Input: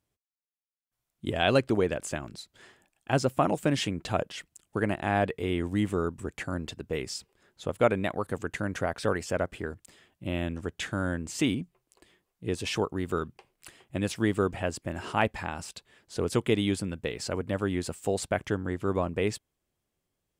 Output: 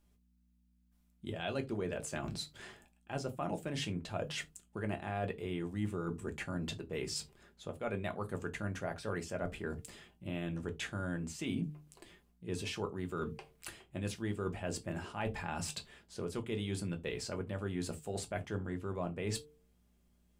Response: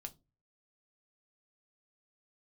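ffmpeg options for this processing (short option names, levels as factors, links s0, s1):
-filter_complex "[0:a]bandreject=f=149.7:t=h:w=4,bandreject=f=299.4:t=h:w=4,bandreject=f=449.1:t=h:w=4,areverse,acompressor=threshold=0.01:ratio=5,areverse,aeval=exprs='val(0)+0.0002*(sin(2*PI*60*n/s)+sin(2*PI*2*60*n/s)/2+sin(2*PI*3*60*n/s)/3+sin(2*PI*4*60*n/s)/4+sin(2*PI*5*60*n/s)/5)':c=same[s0];[1:a]atrim=start_sample=2205,afade=t=out:st=0.14:d=0.01,atrim=end_sample=6615[s1];[s0][s1]afir=irnorm=-1:irlink=0,volume=2.51"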